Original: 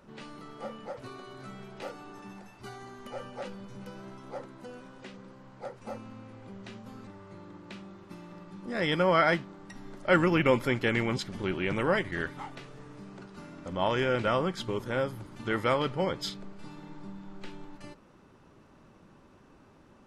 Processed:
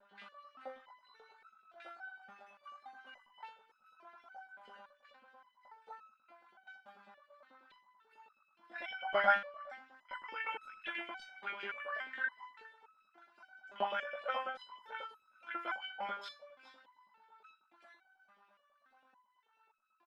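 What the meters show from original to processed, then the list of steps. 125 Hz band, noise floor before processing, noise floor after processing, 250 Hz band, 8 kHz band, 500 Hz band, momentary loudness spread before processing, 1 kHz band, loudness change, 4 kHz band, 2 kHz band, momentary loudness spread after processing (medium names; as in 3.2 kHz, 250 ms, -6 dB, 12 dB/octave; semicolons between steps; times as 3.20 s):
under -35 dB, -58 dBFS, -75 dBFS, -27.5 dB, under -20 dB, -15.0 dB, 22 LU, -6.5 dB, -9.5 dB, -11.0 dB, -6.5 dB, 20 LU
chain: FFT filter 460 Hz 0 dB, 720 Hz +13 dB, 1.4 kHz +10 dB, 3.5 kHz +8 dB, 6.7 kHz -3 dB; LFO high-pass saw up 9.2 Hz 410–3400 Hz; vibrato 1.5 Hz 47 cents; ring modulator 24 Hz; small resonant body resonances 220/1500 Hz, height 15 dB, ringing for 55 ms; on a send: delay 410 ms -17 dB; on the sum: resonator arpeggio 3.5 Hz 200–1300 Hz; trim -3.5 dB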